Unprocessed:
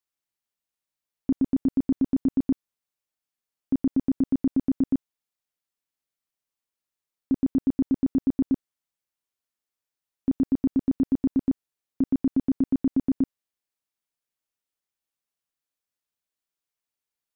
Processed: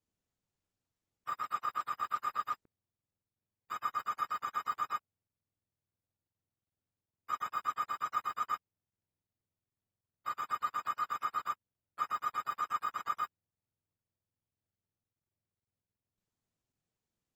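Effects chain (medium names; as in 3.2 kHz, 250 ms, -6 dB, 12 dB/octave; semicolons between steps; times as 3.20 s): spectrum inverted on a logarithmic axis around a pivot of 570 Hz; trim -5.5 dB; Opus 16 kbps 48 kHz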